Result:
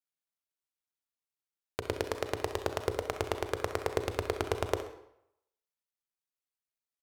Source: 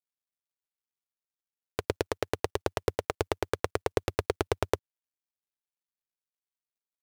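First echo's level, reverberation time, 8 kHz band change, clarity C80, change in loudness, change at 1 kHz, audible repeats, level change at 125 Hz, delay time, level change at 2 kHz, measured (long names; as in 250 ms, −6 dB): −12.5 dB, 0.80 s, −2.0 dB, 12.0 dB, −2.0 dB, −1.5 dB, 1, −2.5 dB, 65 ms, −2.0 dB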